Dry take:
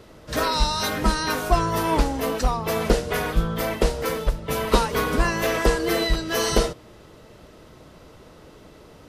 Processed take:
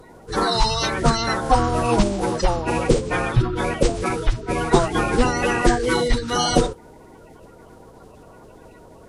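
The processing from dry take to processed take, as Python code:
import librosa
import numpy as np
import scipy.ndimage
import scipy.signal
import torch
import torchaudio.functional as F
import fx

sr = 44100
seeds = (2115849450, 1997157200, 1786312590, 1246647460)

y = fx.spec_quant(x, sr, step_db=30)
y = fx.pitch_keep_formants(y, sr, semitones=-5.5)
y = F.gain(torch.from_numpy(y), 4.0).numpy()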